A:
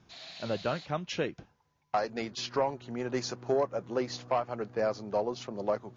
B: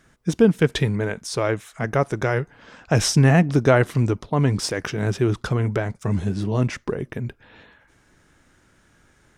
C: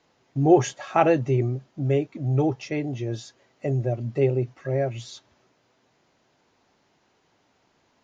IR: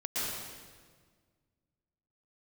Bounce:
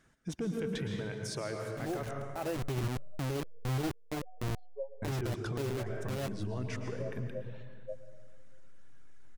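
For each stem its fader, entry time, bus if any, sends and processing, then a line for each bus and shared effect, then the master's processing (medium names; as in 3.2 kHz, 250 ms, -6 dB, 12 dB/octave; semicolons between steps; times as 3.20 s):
-13.0 dB, 2.20 s, bus A, send -18 dB, graphic EQ 500/2000/4000 Hz +5/+6/+10 dB; spectral contrast expander 4:1
-11.0 dB, 0.00 s, muted 2.11–5.02 s, bus A, send -11.5 dB, reverb removal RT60 1.2 s; saturation -8 dBFS, distortion -21 dB
2.37 s -17.5 dB -> 2.63 s -6 dB, 1.40 s, no bus, no send, send-on-delta sampling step -21 dBFS
bus A: 0.0 dB, peak limiter -32 dBFS, peak gain reduction 12 dB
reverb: on, RT60 1.6 s, pre-delay 108 ms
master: peak limiter -27.5 dBFS, peak gain reduction 11.5 dB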